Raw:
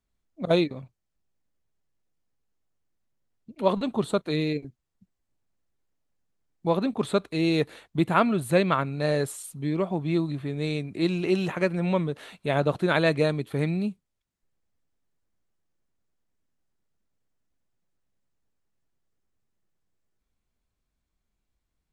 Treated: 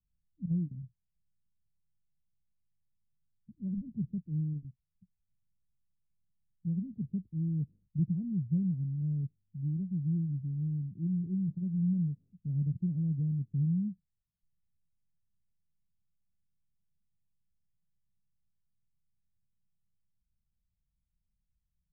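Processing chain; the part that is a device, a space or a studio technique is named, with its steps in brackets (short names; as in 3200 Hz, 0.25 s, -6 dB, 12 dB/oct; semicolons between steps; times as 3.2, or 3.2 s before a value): the neighbour's flat through the wall (LPF 160 Hz 24 dB/oct; bell 190 Hz +6 dB 0.8 oct); gain -2 dB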